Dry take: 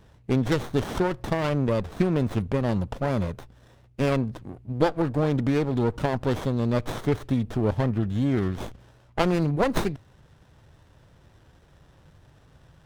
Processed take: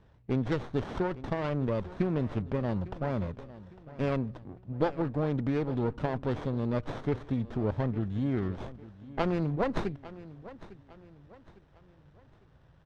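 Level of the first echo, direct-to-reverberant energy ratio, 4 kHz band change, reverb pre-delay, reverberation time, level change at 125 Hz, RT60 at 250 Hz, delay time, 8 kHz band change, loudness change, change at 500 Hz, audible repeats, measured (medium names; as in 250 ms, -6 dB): -17.0 dB, no reverb, -10.5 dB, no reverb, no reverb, -6.0 dB, no reverb, 854 ms, under -15 dB, -6.0 dB, -6.0 dB, 3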